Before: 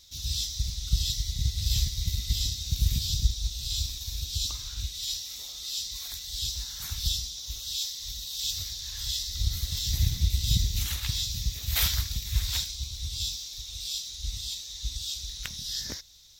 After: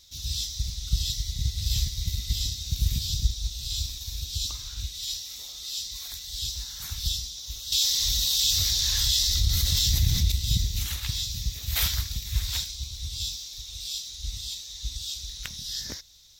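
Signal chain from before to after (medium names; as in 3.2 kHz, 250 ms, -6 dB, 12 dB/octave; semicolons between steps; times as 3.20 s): 7.72–10.32 s: level flattener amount 70%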